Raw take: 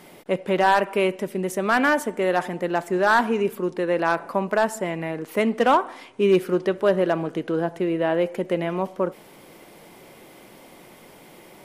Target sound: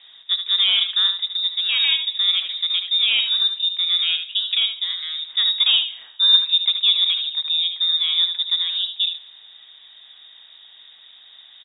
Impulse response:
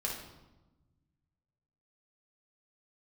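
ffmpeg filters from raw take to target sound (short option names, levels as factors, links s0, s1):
-filter_complex "[0:a]highpass=f=240:w=0.5412,highpass=f=240:w=1.3066,tiltshelf=f=690:g=6.5,aecho=1:1:75:0.398,asplit=2[s0][s1];[1:a]atrim=start_sample=2205,adelay=97[s2];[s1][s2]afir=irnorm=-1:irlink=0,volume=0.0596[s3];[s0][s3]amix=inputs=2:normalize=0,lowpass=f=3400:t=q:w=0.5098,lowpass=f=3400:t=q:w=0.6013,lowpass=f=3400:t=q:w=0.9,lowpass=f=3400:t=q:w=2.563,afreqshift=-4000"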